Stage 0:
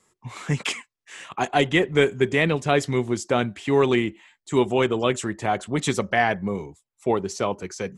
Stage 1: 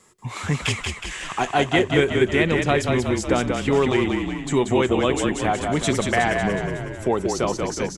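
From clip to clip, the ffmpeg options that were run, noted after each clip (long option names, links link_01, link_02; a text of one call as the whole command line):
ffmpeg -i in.wav -filter_complex "[0:a]acompressor=threshold=-41dB:ratio=1.5,asplit=2[link_01][link_02];[link_02]asplit=8[link_03][link_04][link_05][link_06][link_07][link_08][link_09][link_10];[link_03]adelay=184,afreqshift=-33,volume=-4.5dB[link_11];[link_04]adelay=368,afreqshift=-66,volume=-9.2dB[link_12];[link_05]adelay=552,afreqshift=-99,volume=-14dB[link_13];[link_06]adelay=736,afreqshift=-132,volume=-18.7dB[link_14];[link_07]adelay=920,afreqshift=-165,volume=-23.4dB[link_15];[link_08]adelay=1104,afreqshift=-198,volume=-28.2dB[link_16];[link_09]adelay=1288,afreqshift=-231,volume=-32.9dB[link_17];[link_10]adelay=1472,afreqshift=-264,volume=-37.6dB[link_18];[link_11][link_12][link_13][link_14][link_15][link_16][link_17][link_18]amix=inputs=8:normalize=0[link_19];[link_01][link_19]amix=inputs=2:normalize=0,volume=8.5dB" out.wav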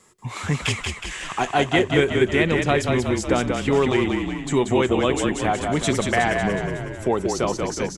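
ffmpeg -i in.wav -af anull out.wav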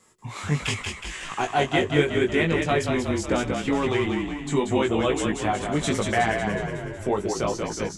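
ffmpeg -i in.wav -af "flanger=delay=18:depth=2.5:speed=0.79" out.wav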